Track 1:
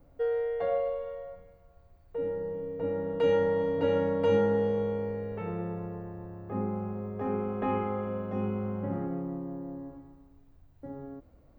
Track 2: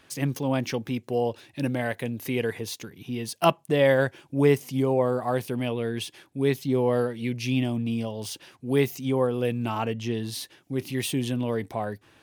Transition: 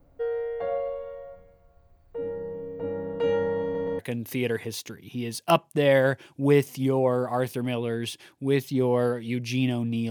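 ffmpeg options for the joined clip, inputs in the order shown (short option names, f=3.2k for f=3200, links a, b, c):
-filter_complex "[0:a]apad=whole_dur=10.1,atrim=end=10.1,asplit=3[a][b][c];[a]atrim=end=3.752[d];[b]atrim=start=3.628:end=3.752[e];[c]atrim=start=3.628:end=3.752[f];[1:a]atrim=start=1.928:end=8.04[g];[d][e]acrossfade=d=0.004:c1=hsin:c2=hsin[h];[h][f]acrossfade=d=0.004:c1=hsin:c2=hsin[i];[i][g]acrossfade=d=0.004:c1=hsin:c2=hsin"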